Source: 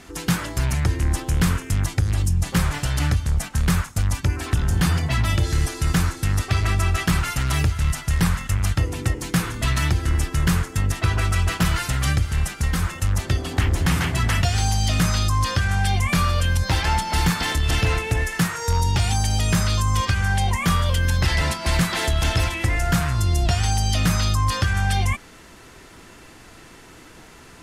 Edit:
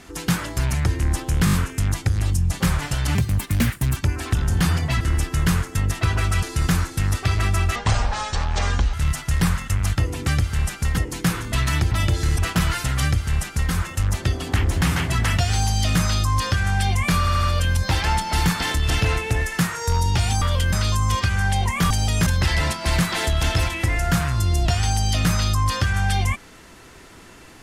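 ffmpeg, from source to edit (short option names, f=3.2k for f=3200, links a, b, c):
-filter_complex "[0:a]asplit=22[a][b][c][d][e][f][g][h][i][j][k][l][m][n][o][p][q][r][s][t][u][v];[a]atrim=end=1.472[w];[b]atrim=start=1.448:end=1.472[x];[c]atrim=start=1.448:end=1.472[y];[d]atrim=start=1.448:end=1.472[z];[e]atrim=start=1.448:end=3.074[aa];[f]atrim=start=3.07:end=4.17,asetpts=PTS-STARTPTS,asetrate=59535,aresample=44100,atrim=end_sample=35933,asetpts=PTS-STARTPTS[ab];[g]atrim=start=4.166:end=5.212[ac];[h]atrim=start=10.008:end=11.432[ad];[i]atrim=start=5.678:end=7.014[ae];[j]atrim=start=7.01:end=7.73,asetpts=PTS-STARTPTS,asetrate=26901,aresample=44100,atrim=end_sample=52052,asetpts=PTS-STARTPTS[af];[k]atrim=start=7.726:end=9.072[ag];[l]atrim=start=12.058:end=12.762[ah];[m]atrim=start=9.068:end=10.012[ai];[n]atrim=start=5.208:end=5.682[aj];[o]atrim=start=11.428:end=16.312[ak];[p]atrim=start=16.228:end=16.312[al];[q]atrim=start=16.228:end=16.312[am];[r]atrim=start=16.228:end=19.222[an];[s]atrim=start=20.758:end=21.072[ao];[t]atrim=start=19.578:end=20.762[ap];[u]atrim=start=19.218:end=19.582[aq];[v]atrim=start=21.068[ar];[w][x]acrossfade=d=0.004:c1=hsin:c2=hsin[as];[as][y]acrossfade=d=0.004:c1=hsin:c2=hsin[at];[at][z]acrossfade=d=0.004:c1=hsin:c2=hsin[au];[au][aa]acrossfade=d=0.004:c1=hsin:c2=hsin[av];[av][ab]acrossfade=d=0.004:c1=hsin:c2=hsin[aw];[aw][ac]acrossfade=d=0.004:c1=hsin:c2=hsin[ax];[ax][ad]acrossfade=d=0.004:c1=hsin:c2=hsin[ay];[ay][ae]acrossfade=d=0.004:c1=hsin:c2=hsin[az];[az][af]acrossfade=d=0.004:c1=hsin:c2=hsin[ba];[ba][ag]acrossfade=d=0.004:c1=hsin:c2=hsin[bb];[bb][ah]acrossfade=d=0.004:c1=hsin:c2=hsin[bc];[bc][ai]acrossfade=d=0.004:c1=hsin:c2=hsin[bd];[bd][aj]acrossfade=d=0.004:c1=hsin:c2=hsin[be];[be][ak]acrossfade=d=0.004:c1=hsin:c2=hsin[bf];[bf][al]acrossfade=d=0.004:c1=hsin:c2=hsin[bg];[bg][am]acrossfade=d=0.004:c1=hsin:c2=hsin[bh];[bh][an]acrossfade=d=0.004:c1=hsin:c2=hsin[bi];[bi][ao]acrossfade=d=0.004:c1=hsin:c2=hsin[bj];[bj][ap]acrossfade=d=0.004:c1=hsin:c2=hsin[bk];[bk][aq]acrossfade=d=0.004:c1=hsin:c2=hsin[bl];[bl][ar]acrossfade=d=0.004:c1=hsin:c2=hsin"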